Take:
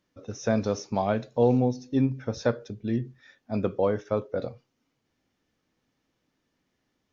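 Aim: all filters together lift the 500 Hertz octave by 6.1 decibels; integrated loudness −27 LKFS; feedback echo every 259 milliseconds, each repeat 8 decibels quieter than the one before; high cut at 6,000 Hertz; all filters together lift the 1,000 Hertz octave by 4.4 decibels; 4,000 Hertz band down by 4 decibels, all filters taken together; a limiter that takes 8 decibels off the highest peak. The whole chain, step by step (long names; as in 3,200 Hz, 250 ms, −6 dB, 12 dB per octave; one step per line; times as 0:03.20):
low-pass filter 6,000 Hz
parametric band 500 Hz +6 dB
parametric band 1,000 Hz +3.5 dB
parametric band 4,000 Hz −4 dB
brickwall limiter −13 dBFS
repeating echo 259 ms, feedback 40%, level −8 dB
level −1 dB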